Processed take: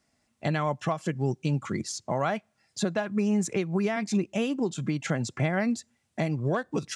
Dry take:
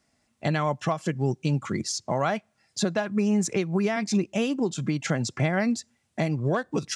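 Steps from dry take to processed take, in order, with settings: dynamic bell 5.2 kHz, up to -5 dB, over -47 dBFS, Q 2.1; trim -2 dB

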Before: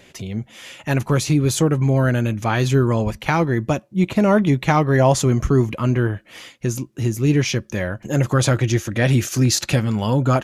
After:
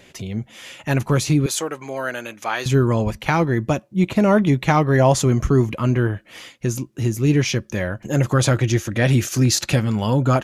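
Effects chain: 1.46–2.66 s: Bessel high-pass 690 Hz, order 2

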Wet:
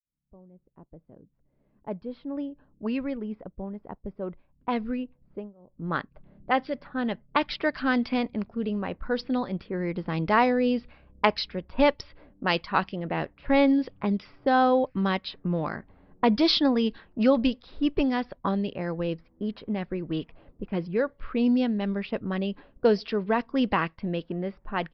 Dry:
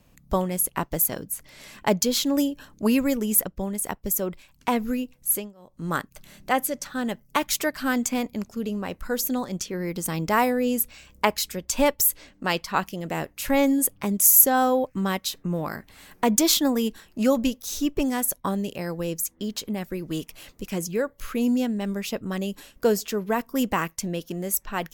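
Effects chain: fade-in on the opening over 7.43 s; resampled via 11.025 kHz; level-controlled noise filter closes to 410 Hz, open at -20 dBFS

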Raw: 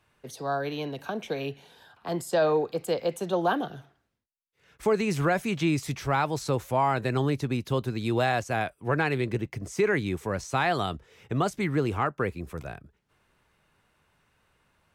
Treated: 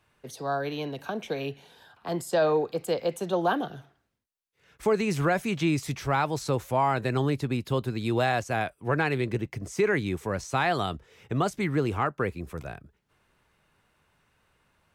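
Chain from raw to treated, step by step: 7.34–8.09 s: band-stop 6 kHz, Q 8.9

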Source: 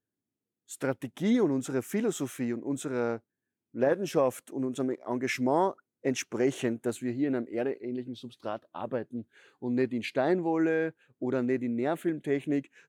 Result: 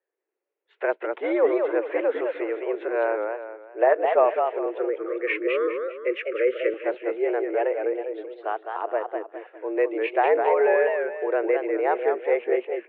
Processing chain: mistuned SSB +100 Hz 300–2500 Hz; 4.66–6.74 s: Chebyshev band-stop 570–1200 Hz, order 4; modulated delay 203 ms, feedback 37%, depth 166 cents, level -5 dB; trim +7 dB

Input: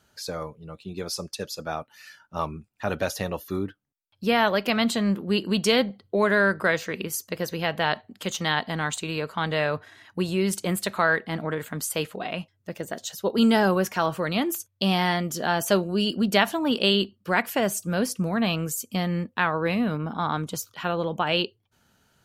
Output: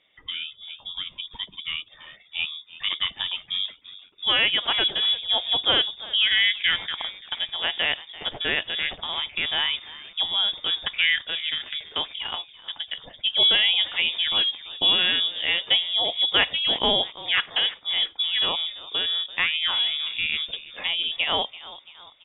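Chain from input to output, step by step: 14.16–15.32 s: tilt EQ -1.5 dB/octave; frequency-shifting echo 337 ms, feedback 50%, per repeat -120 Hz, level -17.5 dB; frequency inversion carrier 3.6 kHz

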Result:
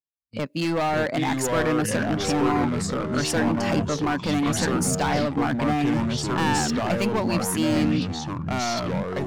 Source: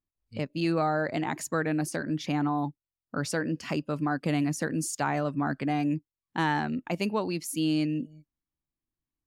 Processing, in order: gate with hold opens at -41 dBFS; high-pass 160 Hz 6 dB/octave; peaking EQ 360 Hz -4.5 dB 0.32 oct; hard clipper -28 dBFS, distortion -10 dB; ever faster or slower copies 471 ms, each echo -4 st, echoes 3; trim +7.5 dB

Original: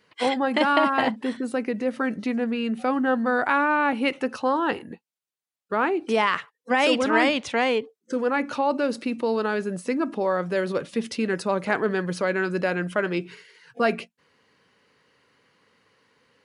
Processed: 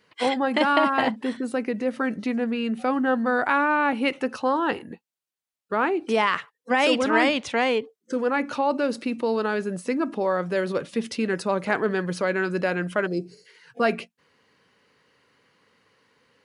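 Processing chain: time-frequency box 13.07–13.46 s, 780–4000 Hz -20 dB

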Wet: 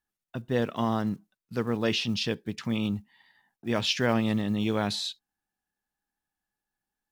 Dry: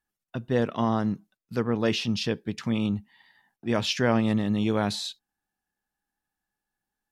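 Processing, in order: block-companded coder 7-bit; dynamic bell 3.3 kHz, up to +4 dB, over -41 dBFS, Q 0.85; trim -2.5 dB

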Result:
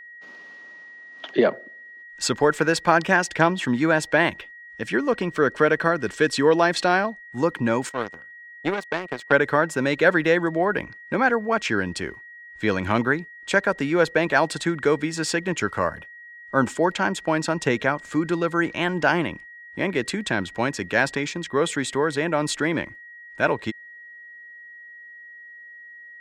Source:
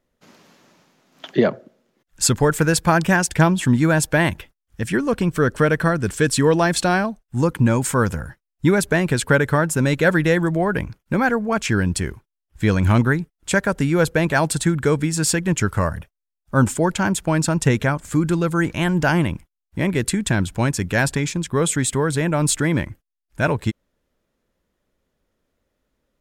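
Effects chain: 7.89–9.32 s: power-law waveshaper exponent 2; three-band isolator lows -16 dB, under 250 Hz, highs -18 dB, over 5.7 kHz; whistle 1.9 kHz -41 dBFS

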